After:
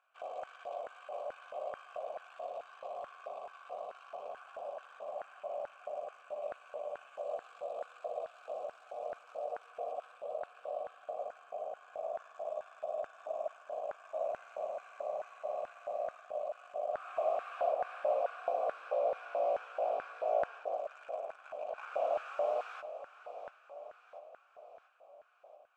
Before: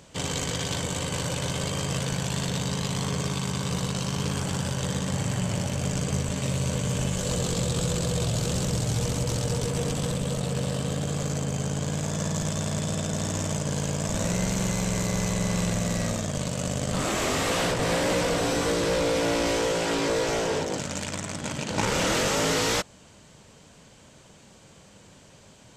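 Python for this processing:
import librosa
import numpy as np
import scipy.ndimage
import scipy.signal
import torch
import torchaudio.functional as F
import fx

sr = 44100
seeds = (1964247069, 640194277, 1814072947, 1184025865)

p1 = fx.vowel_filter(x, sr, vowel='a')
p2 = fx.peak_eq(p1, sr, hz=4600.0, db=-12.0, octaves=2.9)
p3 = p2 + fx.echo_feedback(p2, sr, ms=689, feedback_pct=57, wet_db=-12, dry=0)
p4 = fx.filter_lfo_highpass(p3, sr, shape='square', hz=2.3, low_hz=600.0, high_hz=1500.0, q=5.6)
y = p4 * librosa.db_to_amplitude(-3.5)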